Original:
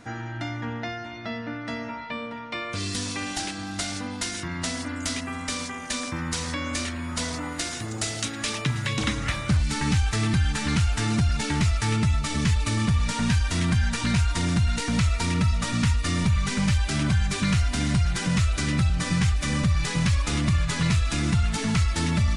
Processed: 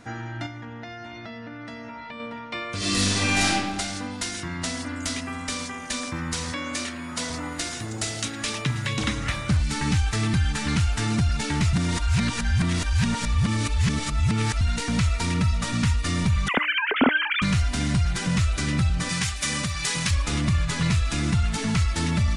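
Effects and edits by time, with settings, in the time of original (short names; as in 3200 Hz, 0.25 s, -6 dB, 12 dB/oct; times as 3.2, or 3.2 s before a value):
0.46–2.2 compressor, threshold -34 dBFS
2.77–3.49 reverb throw, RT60 1.3 s, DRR -9 dB
6.52–7.3 Bessel high-pass 170 Hz
11.73–14.61 reverse
16.48–17.42 sine-wave speech
19.09–20.11 tilt +2.5 dB/oct
whole clip: de-hum 303.6 Hz, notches 35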